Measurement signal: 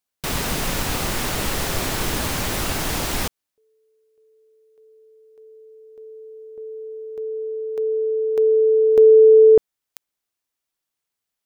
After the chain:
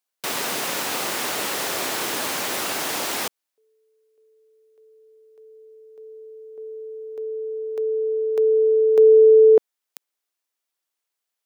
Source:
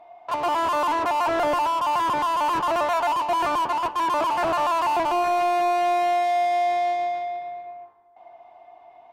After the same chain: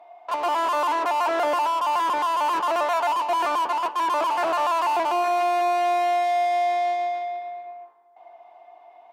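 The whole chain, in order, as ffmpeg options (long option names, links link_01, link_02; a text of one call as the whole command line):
ffmpeg -i in.wav -af "highpass=350" out.wav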